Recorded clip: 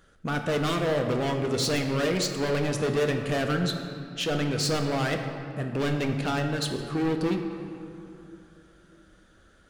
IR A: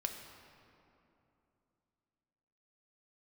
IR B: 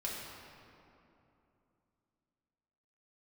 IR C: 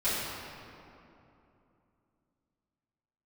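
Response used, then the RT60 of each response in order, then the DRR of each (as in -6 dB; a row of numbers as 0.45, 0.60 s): A; 2.9, 2.9, 2.9 s; 3.5, -5.0, -15.0 dB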